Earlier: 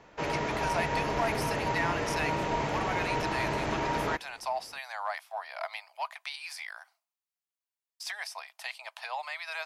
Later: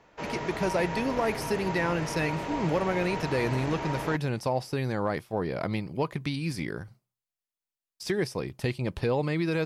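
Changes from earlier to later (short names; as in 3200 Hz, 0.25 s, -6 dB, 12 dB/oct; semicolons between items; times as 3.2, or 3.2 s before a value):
speech: remove Chebyshev high-pass 660 Hz, order 6; background -3.5 dB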